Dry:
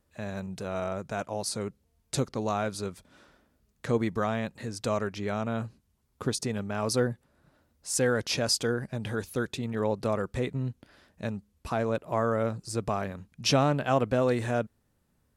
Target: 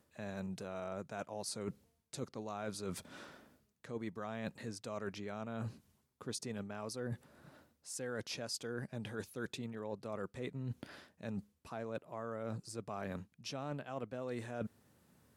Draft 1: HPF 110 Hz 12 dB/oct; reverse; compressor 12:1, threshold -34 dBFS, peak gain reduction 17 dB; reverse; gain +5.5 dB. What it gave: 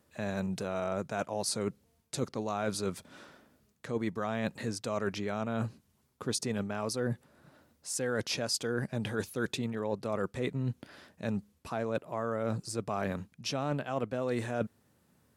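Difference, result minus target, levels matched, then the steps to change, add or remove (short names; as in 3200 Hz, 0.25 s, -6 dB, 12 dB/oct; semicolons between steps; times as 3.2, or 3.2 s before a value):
compressor: peak gain reduction -9 dB
change: compressor 12:1, threshold -44 dBFS, peak gain reduction 26.5 dB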